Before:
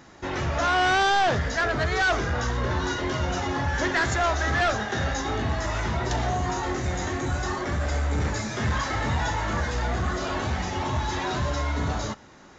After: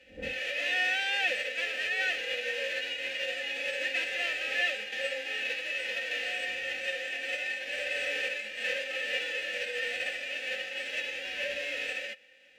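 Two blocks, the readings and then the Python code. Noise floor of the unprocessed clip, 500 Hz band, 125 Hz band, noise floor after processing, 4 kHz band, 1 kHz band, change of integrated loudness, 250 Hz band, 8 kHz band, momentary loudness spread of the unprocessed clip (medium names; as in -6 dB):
-49 dBFS, -8.5 dB, under -35 dB, -45 dBFS, 0.0 dB, -20.0 dB, -5.0 dB, -23.0 dB, no reading, 6 LU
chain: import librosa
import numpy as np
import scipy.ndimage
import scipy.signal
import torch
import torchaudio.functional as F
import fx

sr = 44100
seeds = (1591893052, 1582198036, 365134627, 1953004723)

y = fx.envelope_flatten(x, sr, power=0.1)
y = fx.dmg_wind(y, sr, seeds[0], corner_hz=100.0, level_db=-33.0)
y = fx.vowel_filter(y, sr, vowel='e')
y = fx.peak_eq(y, sr, hz=2500.0, db=10.5, octaves=1.1)
y = y + 0.98 * np.pad(y, (int(3.9 * sr / 1000.0), 0))[:len(y)]
y = F.gain(torch.from_numpy(y), -1.5).numpy()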